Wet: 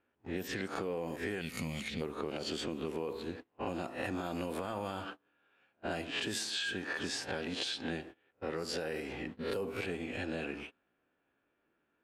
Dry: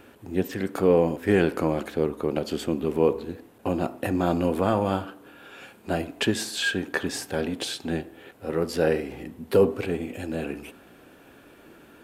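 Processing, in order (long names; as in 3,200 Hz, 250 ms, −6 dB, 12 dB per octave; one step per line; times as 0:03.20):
peak hold with a rise ahead of every peak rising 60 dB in 0.32 s
low-pass that shuts in the quiet parts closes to 2,100 Hz, open at −18 dBFS
noise gate −38 dBFS, range −27 dB
tilt shelving filter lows −4.5 dB
gain on a spectral selection 0:01.41–0:02.01, 270–1,800 Hz −16 dB
brickwall limiter −17.5 dBFS, peak gain reduction 9 dB
downward compressor, threshold −34 dBFS, peak gain reduction 12 dB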